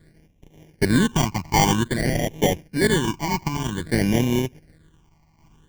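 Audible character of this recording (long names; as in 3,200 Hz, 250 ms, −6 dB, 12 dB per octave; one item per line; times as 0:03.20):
a buzz of ramps at a fixed pitch in blocks of 16 samples
tremolo saw down 1.3 Hz, depth 55%
aliases and images of a low sample rate 1,300 Hz, jitter 0%
phaser sweep stages 8, 0.52 Hz, lowest notch 470–1,400 Hz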